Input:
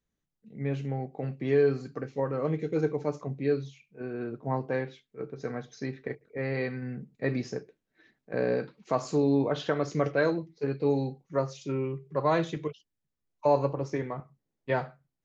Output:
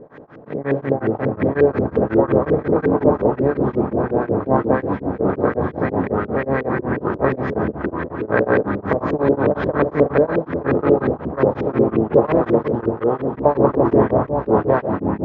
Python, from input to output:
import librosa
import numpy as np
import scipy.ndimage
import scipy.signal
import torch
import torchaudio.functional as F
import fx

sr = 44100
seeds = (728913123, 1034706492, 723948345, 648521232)

y = fx.bin_compress(x, sr, power=0.4)
y = fx.echo_pitch(y, sr, ms=200, semitones=-4, count=3, db_per_echo=-3.0)
y = y + 10.0 ** (-12.5 / 20.0) * np.pad(y, (int(839 * sr / 1000.0), 0))[:len(y)]
y = fx.leveller(y, sr, passes=1, at=(13.85, 14.71))
y = fx.filter_lfo_lowpass(y, sr, shape='saw_up', hz=5.6, low_hz=380.0, high_hz=2300.0, q=2.1)
y = y * np.abs(np.cos(np.pi * 5.5 * np.arange(len(y)) / sr))
y = y * 10.0 ** (3.5 / 20.0)